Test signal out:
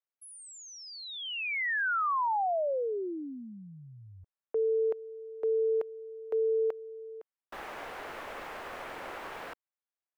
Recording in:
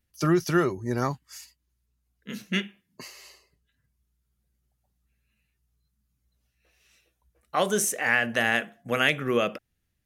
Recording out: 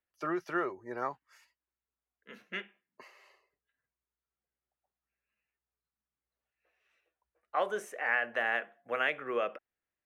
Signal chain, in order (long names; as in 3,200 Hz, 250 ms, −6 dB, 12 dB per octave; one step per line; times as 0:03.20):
three-way crossover with the lows and the highs turned down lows −22 dB, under 390 Hz, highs −21 dB, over 2,400 Hz
level −4.5 dB